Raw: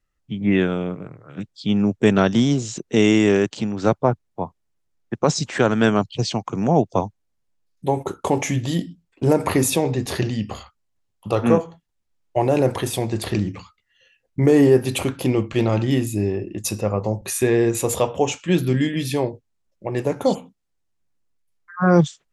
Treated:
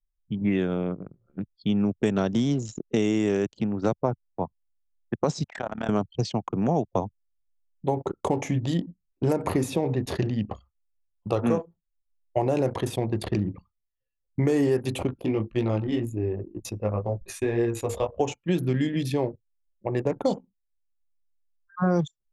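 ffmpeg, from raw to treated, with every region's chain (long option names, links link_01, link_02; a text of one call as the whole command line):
ffmpeg -i in.wav -filter_complex "[0:a]asettb=1/sr,asplit=3[link_01][link_02][link_03];[link_01]atrim=end=5.444[link_04];[link_02]atrim=start=5.44:end=5.89,asetpts=PTS-STARTPTS,afade=type=in:duration=0.004:curve=qsin,afade=type=out:start_time=0.446:duration=0.004:curve=qsin,lowshelf=frequency=540:width_type=q:width=3:gain=-7,tremolo=f=35:d=0.71,acompressor=threshold=-24dB:ratio=2.5:attack=3.2:release=140:knee=1:detection=peak[link_05];[link_03]atrim=start=5.886[link_06];[link_04][link_05]acrossfade=duration=0.004:curve1=hsin:curve2=qsin[link_07];[link_07][link_06]acrossfade=duration=0.004:curve1=qsin:curve2=hsin,asettb=1/sr,asplit=3[link_08][link_09][link_10];[link_08]atrim=end=15.074[link_11];[link_09]atrim=start=15.07:end=18.2,asetpts=PTS-STARTPTS,afade=type=in:duration=0.004:curve=qsin,afade=type=out:start_time=3.126:duration=0.004:curve=qsin,flanger=delay=16.5:depth=2.7:speed=1.9,asubboost=boost=9.5:cutoff=54[link_12];[link_10]atrim=start=18.196[link_13];[link_11][link_12]acrossfade=duration=0.004:curve1=hsin:curve2=qsin[link_14];[link_14][link_13]acrossfade=duration=0.004:curve1=qsin:curve2=hsin,anlmdn=63.1,acrossover=split=990|4700[link_15][link_16][link_17];[link_15]acompressor=threshold=-19dB:ratio=4[link_18];[link_16]acompressor=threshold=-38dB:ratio=4[link_19];[link_17]acompressor=threshold=-43dB:ratio=4[link_20];[link_18][link_19][link_20]amix=inputs=3:normalize=0,volume=-1.5dB" out.wav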